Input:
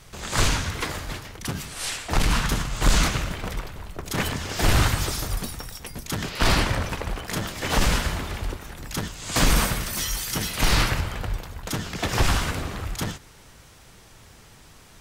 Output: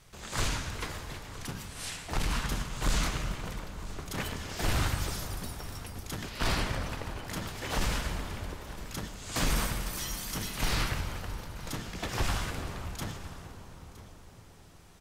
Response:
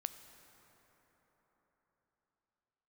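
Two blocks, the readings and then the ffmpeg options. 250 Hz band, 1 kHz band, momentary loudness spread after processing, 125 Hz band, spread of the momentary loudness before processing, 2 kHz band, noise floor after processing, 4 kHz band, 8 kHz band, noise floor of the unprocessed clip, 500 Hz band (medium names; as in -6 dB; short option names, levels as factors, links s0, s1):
-8.5 dB, -8.5 dB, 12 LU, -8.5 dB, 12 LU, -9.0 dB, -53 dBFS, -9.0 dB, -9.0 dB, -50 dBFS, -8.5 dB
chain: -filter_complex "[0:a]aecho=1:1:964:0.133[s0];[1:a]atrim=start_sample=2205,asetrate=29988,aresample=44100[s1];[s0][s1]afir=irnorm=-1:irlink=0,volume=0.355"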